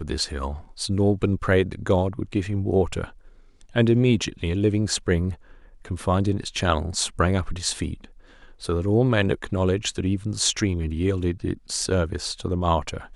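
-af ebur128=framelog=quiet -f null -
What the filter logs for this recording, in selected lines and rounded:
Integrated loudness:
  I:         -24.0 LUFS
  Threshold: -34.5 LUFS
Loudness range:
  LRA:         1.8 LU
  Threshold: -44.4 LUFS
  LRA low:   -25.4 LUFS
  LRA high:  -23.5 LUFS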